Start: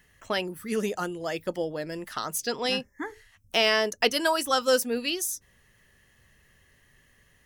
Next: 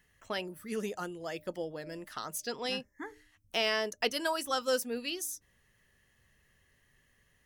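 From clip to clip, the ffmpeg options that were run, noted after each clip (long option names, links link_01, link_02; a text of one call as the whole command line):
ffmpeg -i in.wav -af "bandreject=frequency=302.6:width_type=h:width=4,bandreject=frequency=605.2:width_type=h:width=4,volume=-7.5dB" out.wav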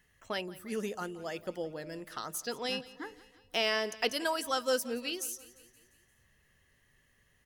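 ffmpeg -i in.wav -af "aecho=1:1:174|348|522|696|870:0.112|0.064|0.0365|0.0208|0.0118" out.wav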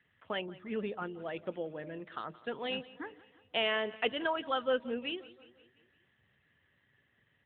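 ffmpeg -i in.wav -ar 8000 -c:a libopencore_amrnb -b:a 12200 out.amr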